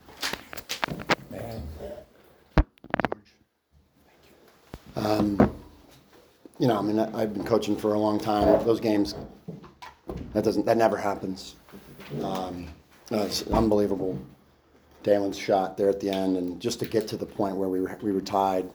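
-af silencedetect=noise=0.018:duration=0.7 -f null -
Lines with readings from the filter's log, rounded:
silence_start: 3.13
silence_end: 4.74 | silence_duration: 1.61
silence_start: 5.60
silence_end: 6.46 | silence_duration: 0.86
silence_start: 14.23
silence_end: 15.05 | silence_duration: 0.81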